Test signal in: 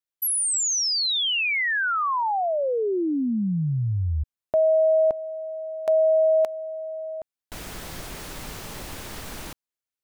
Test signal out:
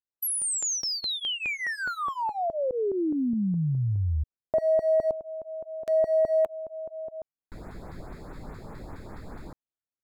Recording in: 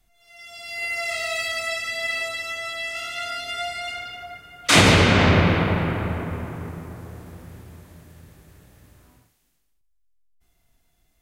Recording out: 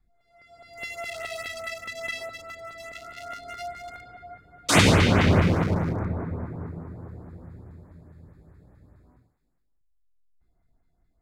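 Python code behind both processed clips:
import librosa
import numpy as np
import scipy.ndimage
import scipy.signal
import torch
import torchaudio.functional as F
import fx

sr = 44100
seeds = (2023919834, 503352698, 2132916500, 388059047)

y = fx.wiener(x, sr, points=15)
y = fx.filter_lfo_notch(y, sr, shape='saw_up', hz=4.8, low_hz=480.0, high_hz=6000.0, q=0.73)
y = y * 10.0 ** (-1.5 / 20.0)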